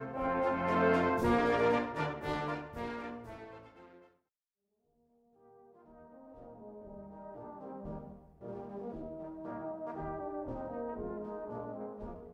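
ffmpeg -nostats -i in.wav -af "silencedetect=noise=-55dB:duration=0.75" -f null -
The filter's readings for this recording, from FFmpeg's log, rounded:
silence_start: 4.07
silence_end: 5.44 | silence_duration: 1.37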